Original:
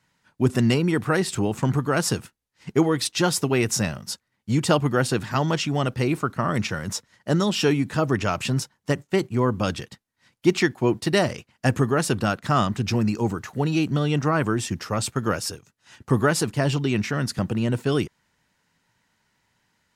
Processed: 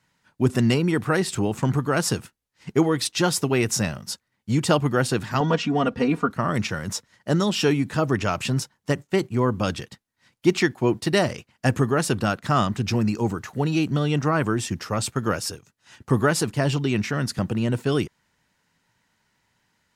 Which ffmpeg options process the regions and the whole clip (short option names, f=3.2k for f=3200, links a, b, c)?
-filter_complex "[0:a]asettb=1/sr,asplit=3[a][b][c];[a]atrim=end=5.404[d];[b]atrim=start=5.4:end=6.31,asetpts=PTS-STARTPTS,afade=t=in:d=0.004:c=qsin,afade=t=out:st=0.906:d=0.004:c=qsin,aemphasis=mode=reproduction:type=75fm,bandreject=f=2.1k:w=25,aecho=1:1:4.2:0.91,atrim=end_sample=40131[e];[c]atrim=start=6.306[f];[d][e]acrossfade=d=0.004:c1=hsin:c2=qsin[g];[g][f]acrossfade=d=0.004:c1=qsin:c2=hsin"